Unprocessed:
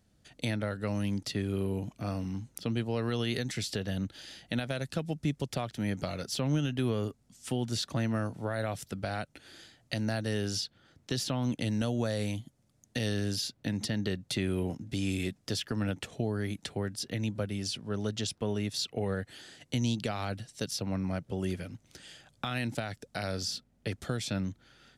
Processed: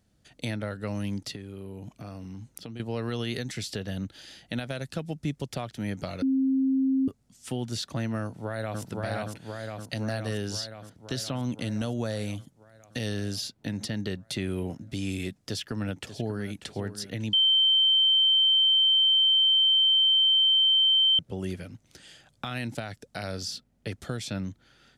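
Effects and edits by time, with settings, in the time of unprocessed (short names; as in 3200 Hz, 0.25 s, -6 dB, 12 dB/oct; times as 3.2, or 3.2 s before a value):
1.35–2.8 compressor, threshold -36 dBFS
6.22–7.08 bleep 266 Hz -21 dBFS
8.22–8.81 echo throw 0.52 s, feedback 70%, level -1 dB
15.35–16.5 echo throw 0.59 s, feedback 35%, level -12 dB
17.33–21.19 bleep 3110 Hz -18 dBFS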